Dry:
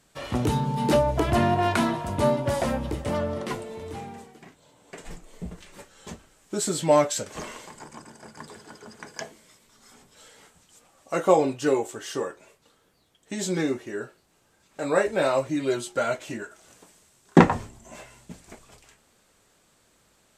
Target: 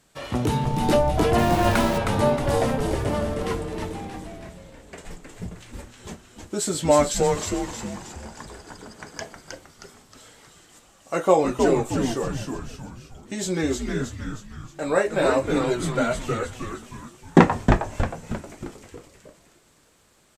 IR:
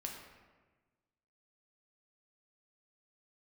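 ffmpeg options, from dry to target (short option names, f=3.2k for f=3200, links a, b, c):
-filter_complex "[0:a]asplit=7[a][b][c][d][e][f][g];[b]adelay=314,afreqshift=-130,volume=-4dB[h];[c]adelay=628,afreqshift=-260,volume=-10.4dB[i];[d]adelay=942,afreqshift=-390,volume=-16.8dB[j];[e]adelay=1256,afreqshift=-520,volume=-23.1dB[k];[f]adelay=1570,afreqshift=-650,volume=-29.5dB[l];[g]adelay=1884,afreqshift=-780,volume=-35.9dB[m];[a][h][i][j][k][l][m]amix=inputs=7:normalize=0,asettb=1/sr,asplit=3[n][o][p];[n]atrim=end=1.384[q];[o]atrim=start=1.38:end=1.98,asetpts=PTS-STARTPTS,afade=t=in:d=0.004:c=qsin,afade=t=out:st=0.596:d=0.004:c=qsin,aeval=exprs='val(0)*gte(abs(val(0)),0.0398)':c=same[r];[p]atrim=start=1.976[s];[q][r]acrossfade=d=0.004:c1=hsin:c2=qsin[t];[t][s]acrossfade=d=0.004:c1=qsin:c2=hsin,volume=1dB"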